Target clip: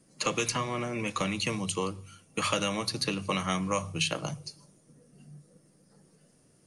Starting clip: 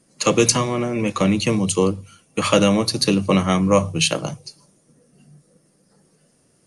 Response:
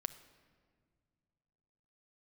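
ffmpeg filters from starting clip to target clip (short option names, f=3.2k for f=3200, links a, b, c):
-filter_complex "[0:a]acrossover=split=840|3200[a][b][c];[a]acompressor=threshold=-31dB:ratio=4[d];[b]acompressor=threshold=-25dB:ratio=4[e];[c]acompressor=threshold=-29dB:ratio=4[f];[d][e][f]amix=inputs=3:normalize=0,asplit=2[g][h];[1:a]atrim=start_sample=2205,afade=t=out:st=0.24:d=0.01,atrim=end_sample=11025,lowshelf=f=450:g=9[i];[h][i]afir=irnorm=-1:irlink=0,volume=-8dB[j];[g][j]amix=inputs=2:normalize=0,volume=-7dB"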